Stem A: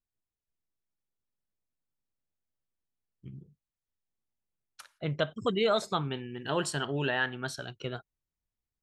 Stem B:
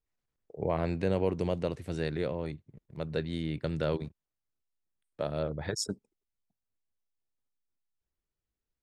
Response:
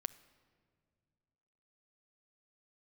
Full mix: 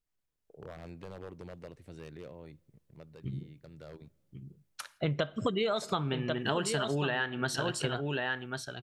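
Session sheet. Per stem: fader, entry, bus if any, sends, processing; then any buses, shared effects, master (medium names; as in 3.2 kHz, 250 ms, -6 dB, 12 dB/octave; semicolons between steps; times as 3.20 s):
-5.5 dB, 0.00 s, send -3.5 dB, echo send -5.5 dB, level rider gain up to 9 dB
-6.0 dB, 0.00 s, send -11.5 dB, no echo send, one-sided wavefolder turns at -23 dBFS; compression 1.5:1, threshold -56 dBFS, peak gain reduction 11 dB; auto duck -12 dB, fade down 0.30 s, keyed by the first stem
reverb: on, RT60 2.1 s, pre-delay 7 ms
echo: delay 1091 ms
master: compression 10:1, threshold -27 dBFS, peak gain reduction 12.5 dB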